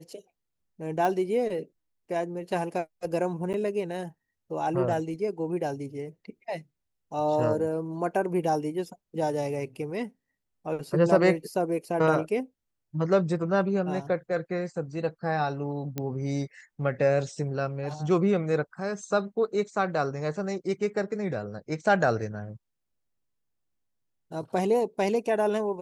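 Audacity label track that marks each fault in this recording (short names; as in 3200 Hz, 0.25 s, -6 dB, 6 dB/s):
1.050000	1.050000	pop -16 dBFS
3.530000	3.540000	gap 9.4 ms
15.980000	15.980000	pop -16 dBFS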